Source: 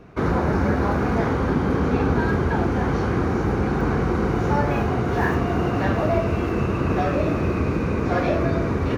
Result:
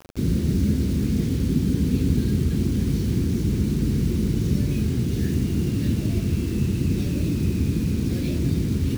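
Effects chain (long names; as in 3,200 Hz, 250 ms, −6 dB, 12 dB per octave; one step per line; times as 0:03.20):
Chebyshev band-stop filter 230–4,100 Hz, order 2
bit reduction 7 bits
level +2 dB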